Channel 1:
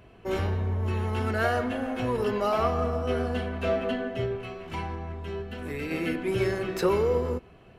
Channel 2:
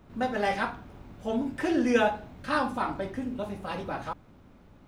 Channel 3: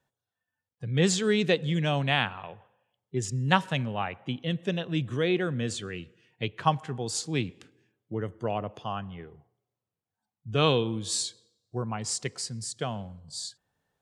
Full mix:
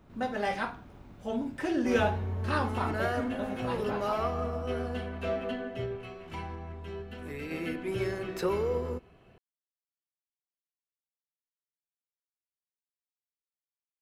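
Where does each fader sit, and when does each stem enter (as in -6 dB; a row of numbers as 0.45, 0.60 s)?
-5.5 dB, -3.5 dB, off; 1.60 s, 0.00 s, off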